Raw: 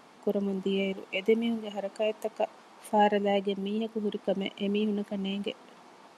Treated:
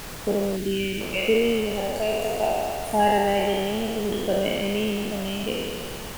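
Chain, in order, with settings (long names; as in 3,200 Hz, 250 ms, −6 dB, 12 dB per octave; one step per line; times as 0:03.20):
peak hold with a decay on every bin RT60 2.19 s
background noise pink −38 dBFS
gain on a spectral selection 0:00.56–0:01.00, 410–1,400 Hz −13 dB
level +1.5 dB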